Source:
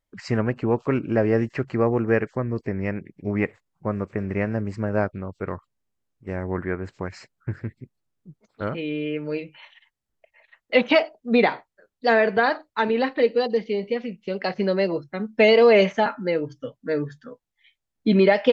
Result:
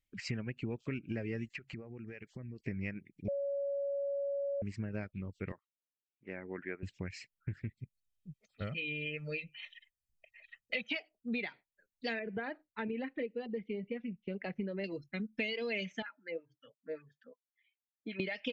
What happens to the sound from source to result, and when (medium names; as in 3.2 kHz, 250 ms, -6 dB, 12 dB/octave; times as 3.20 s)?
1.47–2.65 s: compression, threshold -35 dBFS
3.28–4.62 s: bleep 561 Hz -10 dBFS
5.52–6.83 s: band-pass 330–2200 Hz
7.79–10.90 s: comb 1.6 ms, depth 55%
12.19–14.84 s: low-pass 1.4 kHz
16.02–18.20 s: wah-wah 5.3 Hz 520–1700 Hz, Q 2.1
whole clip: reverb removal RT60 0.67 s; FFT filter 200 Hz 0 dB, 1.1 kHz -15 dB, 2.4 kHz +7 dB, 4.4 kHz 0 dB; compression, threshold -30 dBFS; trim -4.5 dB